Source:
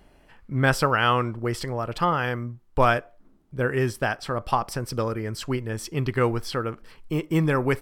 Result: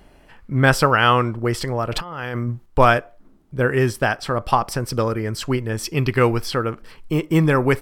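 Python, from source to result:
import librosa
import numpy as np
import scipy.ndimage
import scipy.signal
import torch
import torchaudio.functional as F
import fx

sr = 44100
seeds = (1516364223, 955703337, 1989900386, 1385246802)

y = fx.over_compress(x, sr, threshold_db=-33.0, ratio=-1.0, at=(1.92, 2.66))
y = fx.graphic_eq_31(y, sr, hz=(2500, 5000, 12500), db=(6, 5, 5), at=(5.83, 6.46))
y = y * 10.0 ** (5.5 / 20.0)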